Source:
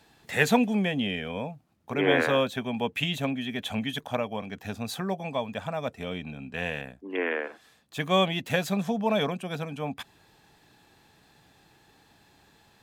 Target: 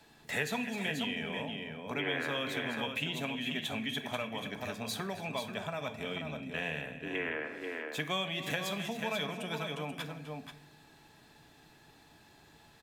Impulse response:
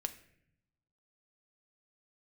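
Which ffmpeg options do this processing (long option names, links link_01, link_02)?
-filter_complex "[0:a]aecho=1:1:262|485:0.126|0.355[link_01];[1:a]atrim=start_sample=2205[link_02];[link_01][link_02]afir=irnorm=-1:irlink=0,acrossover=split=200|1300[link_03][link_04][link_05];[link_03]acompressor=threshold=-47dB:ratio=4[link_06];[link_04]acompressor=threshold=-39dB:ratio=4[link_07];[link_05]acompressor=threshold=-34dB:ratio=4[link_08];[link_06][link_07][link_08]amix=inputs=3:normalize=0"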